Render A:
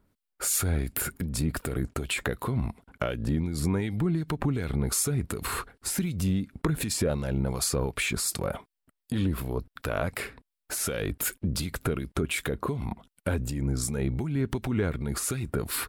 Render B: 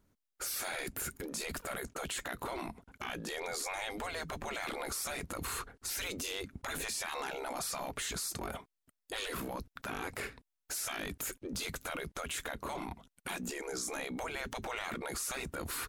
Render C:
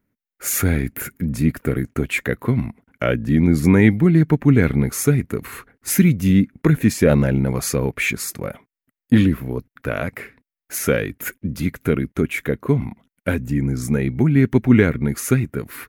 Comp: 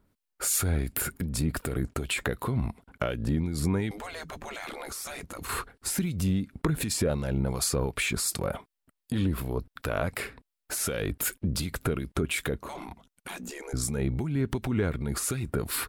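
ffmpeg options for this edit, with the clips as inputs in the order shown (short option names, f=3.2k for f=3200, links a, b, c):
-filter_complex "[1:a]asplit=2[a][b];[0:a]asplit=3[c][d][e];[c]atrim=end=3.912[f];[a]atrim=start=3.908:end=5.492[g];[d]atrim=start=5.488:end=12.572[h];[b]atrim=start=12.568:end=13.732[i];[e]atrim=start=13.728[j];[f][g]acrossfade=d=0.004:c1=hsin:c2=hsin[k];[k][h]acrossfade=d=0.004:c1=hsin:c2=hsin[l];[l][i]acrossfade=d=0.004:c1=hsin:c2=hsin[m];[m][j]acrossfade=d=0.004:c1=hsin:c2=hsin"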